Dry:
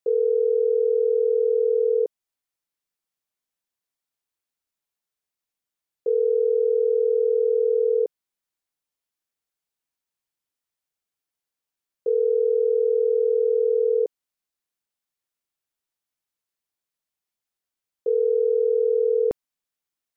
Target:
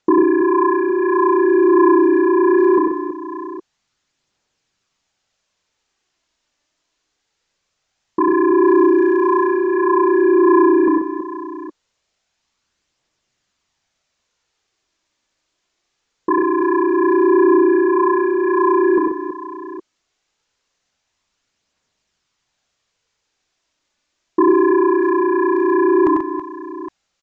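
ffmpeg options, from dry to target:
ffmpeg -i in.wav -af "aeval=exprs='0.299*sin(PI/2*3.55*val(0)/0.299)':channel_layout=same,aphaser=in_gain=1:out_gain=1:delay=2.6:decay=0.35:speed=0.31:type=triangular,aecho=1:1:71|101|242|604:0.631|0.447|0.251|0.158,asetrate=32667,aresample=44100,aresample=16000,aresample=44100" out.wav

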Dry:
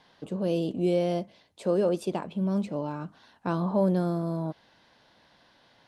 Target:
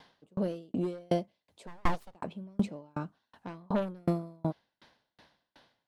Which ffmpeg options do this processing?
ffmpeg -i in.wav -filter_complex "[0:a]aeval=exprs='0.224*(cos(1*acos(clip(val(0)/0.224,-1,1)))-cos(1*PI/2))+0.0562*(cos(5*acos(clip(val(0)/0.224,-1,1)))-cos(5*PI/2))+0.0224*(cos(7*acos(clip(val(0)/0.224,-1,1)))-cos(7*PI/2))':channel_layout=same,asplit=3[link_01][link_02][link_03];[link_01]afade=type=out:start_time=1.66:duration=0.02[link_04];[link_02]aeval=exprs='abs(val(0))':channel_layout=same,afade=type=in:start_time=1.66:duration=0.02,afade=type=out:start_time=2.14:duration=0.02[link_05];[link_03]afade=type=in:start_time=2.14:duration=0.02[link_06];[link_04][link_05][link_06]amix=inputs=3:normalize=0,aeval=exprs='val(0)*pow(10,-39*if(lt(mod(2.7*n/s,1),2*abs(2.7)/1000),1-mod(2.7*n/s,1)/(2*abs(2.7)/1000),(mod(2.7*n/s,1)-2*abs(2.7)/1000)/(1-2*abs(2.7)/1000))/20)':channel_layout=same,volume=1.5dB" out.wav

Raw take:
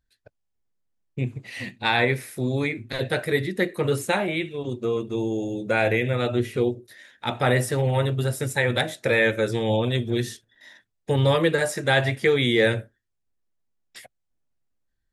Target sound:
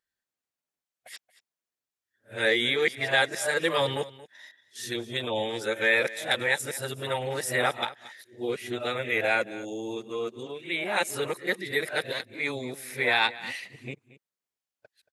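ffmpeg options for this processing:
ffmpeg -i in.wav -af "areverse,highpass=frequency=850:poles=1,aecho=1:1:228:0.126" out.wav

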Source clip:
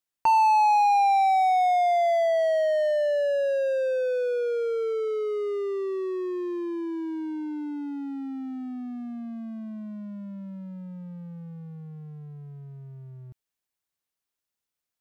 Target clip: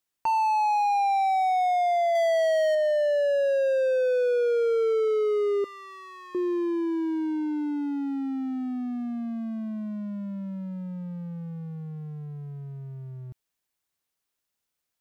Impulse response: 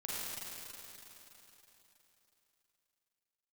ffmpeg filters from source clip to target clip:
-filter_complex "[0:a]alimiter=limit=-22.5dB:level=0:latency=1,asettb=1/sr,asplit=3[link_01][link_02][link_03];[link_01]atrim=end=2.154[link_04];[link_02]atrim=start=2.15:end=2.75,asetpts=PTS-STARTPTS,afade=type=in:duration=0.004:curve=qsin,afade=type=out:start_time=0.596:duration=0.004:curve=qsin,highshelf=frequency=2000:gain=8[link_05];[link_03]atrim=start=2.746[link_06];[link_04][link_05]acrossfade=duration=0.004:curve1=hsin:curve2=qsin[link_07];[link_07][link_06]acrossfade=duration=0.004:curve1=qsin:curve2=hsin,asettb=1/sr,asplit=3[link_08][link_09][link_10];[link_08]atrim=end=5.644[link_11];[link_09]atrim=start=5.64:end=6.35,asetpts=PTS-STARTPTS,afade=type=in:duration=0.004:curve=qsin,afade=type=out:start_time=0.706:duration=0.004:curve=qsin,highpass=frequency=890:width=0.5412,highpass=frequency=890:width=1.3066[link_12];[link_10]atrim=start=6.346[link_13];[link_11][link_12]acrossfade=duration=0.004:curve1=hsin:curve2=qsin[link_14];[link_14][link_13]acrossfade=duration=0.004:curve1=qsin:curve2=hsin,volume=4dB"

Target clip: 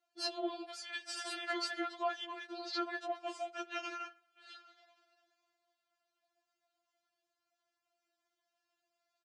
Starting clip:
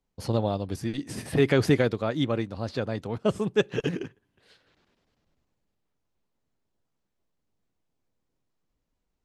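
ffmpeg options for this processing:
ffmpeg -i in.wav -filter_complex "[0:a]asplit=2[link_01][link_02];[link_02]acompressor=threshold=-35dB:ratio=6,volume=0dB[link_03];[link_01][link_03]amix=inputs=2:normalize=0,alimiter=limit=-17.5dB:level=0:latency=1:release=11,afreqshift=-180,asoftclip=type=tanh:threshold=-19dB,highpass=480,equalizer=frequency=680:width_type=q:width=4:gain=8,equalizer=frequency=1500:width_type=q:width=4:gain=10,equalizer=frequency=2900:width_type=q:width=4:gain=4,equalizer=frequency=4600:width_type=q:width=4:gain=5,lowpass=frequency=8100:width=0.5412,lowpass=frequency=8100:width=1.3066,asplit=2[link_04][link_05];[link_05]adelay=73,lowpass=frequency=2200:poles=1,volume=-20.5dB,asplit=2[link_06][link_07];[link_07]adelay=73,lowpass=frequency=2200:poles=1,volume=0.39,asplit=2[link_08][link_09];[link_09]adelay=73,lowpass=frequency=2200:poles=1,volume=0.39[link_10];[link_06][link_08][link_10]amix=inputs=3:normalize=0[link_11];[link_04][link_11]amix=inputs=2:normalize=0,afftfilt=real='re*4*eq(mod(b,16),0)':imag='im*4*eq(mod(b,16),0)':win_size=2048:overlap=0.75,volume=-3dB" out.wav

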